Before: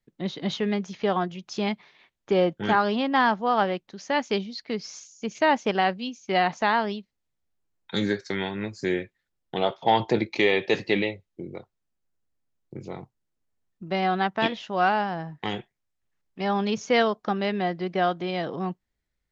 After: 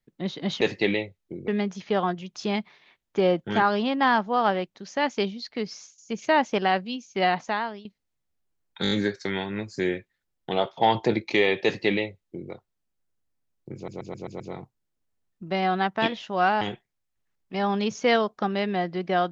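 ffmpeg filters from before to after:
-filter_complex "[0:a]asplit=15[s0][s1][s2][s3][s4][s5][s6][s7][s8][s9][s10][s11][s12][s13][s14];[s0]atrim=end=0.612[s15];[s1]atrim=start=10.688:end=11.562[s16];[s2]atrim=start=0.608:end=5.11,asetpts=PTS-STARTPTS,afade=t=out:st=4.212:d=0.29:silence=0.211349[s17];[s3]atrim=start=5.11:end=6.98,asetpts=PTS-STARTPTS,afade=t=in:d=0.004:c=hsin:silence=0.211349,afade=t=out:st=1.28:d=0.59:silence=0.158489[s18];[s4]atrim=start=6.98:end=7.982,asetpts=PTS-STARTPTS,afade=t=in:d=0.004:c=hsin:silence=0.158489[s19];[s5]atrim=start=7.958:end=7.982[s20];[s6]atrim=start=7.958:end=7.982[s21];[s7]atrim=start=7.958:end=7.982[s22];[s8]atrim=start=7.958:end=12.932[s23];[s9]atrim=start=12.798:end=12.932[s24];[s10]atrim=start=12.798:end=12.932[s25];[s11]atrim=start=12.798:end=12.932[s26];[s12]atrim=start=12.798:end=12.932[s27];[s13]atrim=start=12.798:end=15.012[s28];[s14]atrim=start=15.468[s29];[s15][s16]acrossfade=d=0.004:c1=hsin:c2=hsin[s30];[s17][s18][s19]concat=n=3:v=0:a=1[s31];[s30][s31]acrossfade=d=0.004:c1=hsin:c2=hsin[s32];[s32][s20]acrossfade=d=0.004:c1=hsin:c2=hsin[s33];[s33][s21]acrossfade=d=0.004:c1=hsin:c2=hsin[s34];[s34][s22]acrossfade=d=0.004:c1=hsin:c2=hsin[s35];[s35][s23]acrossfade=d=0.004:c1=hsin:c2=hsin[s36];[s36][s24]acrossfade=d=0.004:c1=hsin:c2=hsin[s37];[s37][s25]acrossfade=d=0.004:c1=hsin:c2=hsin[s38];[s38][s26]acrossfade=d=0.004:c1=hsin:c2=hsin[s39];[s39][s27]acrossfade=d=0.004:c1=hsin:c2=hsin[s40];[s40][s28]acrossfade=d=0.004:c1=hsin:c2=hsin[s41];[s41][s29]acrossfade=d=0.004:c1=hsin:c2=hsin"

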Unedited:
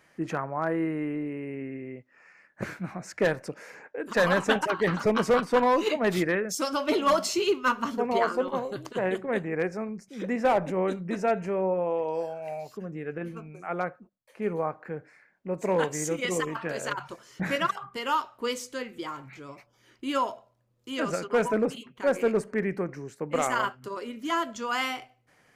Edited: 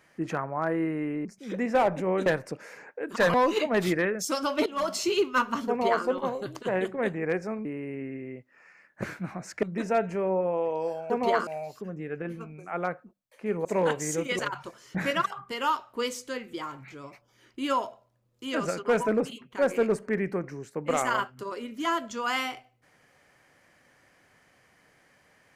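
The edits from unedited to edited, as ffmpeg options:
-filter_complex "[0:a]asplit=11[s0][s1][s2][s3][s4][s5][s6][s7][s8][s9][s10];[s0]atrim=end=1.252[s11];[s1]atrim=start=9.948:end=10.962[s12];[s2]atrim=start=3.228:end=4.312[s13];[s3]atrim=start=5.638:end=6.96,asetpts=PTS-STARTPTS,afade=t=out:st=1.318:d=0.004:c=hsin:silence=0.149624[s14];[s4]atrim=start=6.96:end=9.952,asetpts=PTS-STARTPTS,afade=t=in:d=0.4:silence=0.149624[s15];[s5]atrim=start=1.248:end=3.232[s16];[s6]atrim=start=10.958:end=12.432[s17];[s7]atrim=start=7.978:end=8.352[s18];[s8]atrim=start=12.428:end=14.612[s19];[s9]atrim=start=15.578:end=16.322[s20];[s10]atrim=start=16.838[s21];[s11][s12]acrossfade=d=0.004:c1=hsin:c2=hsin[s22];[s22][s13]acrossfade=d=0.004:c1=hsin:c2=hsin[s23];[s14][s15]concat=n=2:v=0:a=1[s24];[s23][s24]acrossfade=d=0.004:c1=hsin:c2=hsin[s25];[s25][s16]acrossfade=d=0.004:c1=hsin:c2=hsin[s26];[s26][s17]acrossfade=d=0.004:c1=hsin:c2=hsin[s27];[s27][s18]acrossfade=d=0.004:c1=hsin:c2=hsin[s28];[s28][s19]acrossfade=d=0.004:c1=hsin:c2=hsin[s29];[s29][s20]acrossfade=d=0.004:c1=hsin:c2=hsin[s30];[s30][s21]acrossfade=d=0.004:c1=hsin:c2=hsin"

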